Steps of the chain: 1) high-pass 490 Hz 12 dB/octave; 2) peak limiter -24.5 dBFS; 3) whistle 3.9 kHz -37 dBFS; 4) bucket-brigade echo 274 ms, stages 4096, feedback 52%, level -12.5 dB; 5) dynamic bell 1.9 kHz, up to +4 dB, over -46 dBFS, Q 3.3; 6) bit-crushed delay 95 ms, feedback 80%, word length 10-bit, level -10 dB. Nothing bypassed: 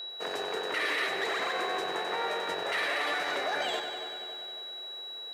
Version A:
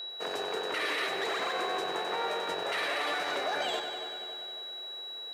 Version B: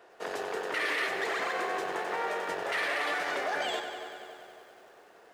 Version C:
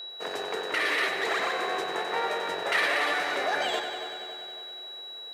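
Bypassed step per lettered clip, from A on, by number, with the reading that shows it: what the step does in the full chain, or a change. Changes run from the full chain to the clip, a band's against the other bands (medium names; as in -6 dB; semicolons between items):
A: 5, 2 kHz band -2.5 dB; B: 3, 4 kHz band -6.5 dB; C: 2, mean gain reduction 1.5 dB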